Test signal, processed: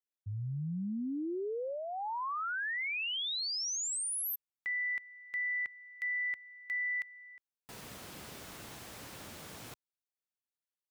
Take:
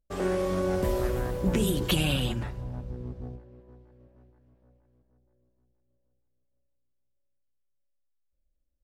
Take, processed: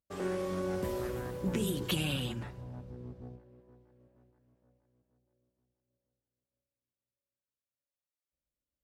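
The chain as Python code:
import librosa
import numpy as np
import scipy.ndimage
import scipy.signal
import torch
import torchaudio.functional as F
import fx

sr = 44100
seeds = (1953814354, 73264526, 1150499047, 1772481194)

y = scipy.signal.sosfilt(scipy.signal.butter(2, 89.0, 'highpass', fs=sr, output='sos'), x)
y = fx.dynamic_eq(y, sr, hz=660.0, q=3.1, threshold_db=-45.0, ratio=4.0, max_db=-4)
y = F.gain(torch.from_numpy(y), -6.0).numpy()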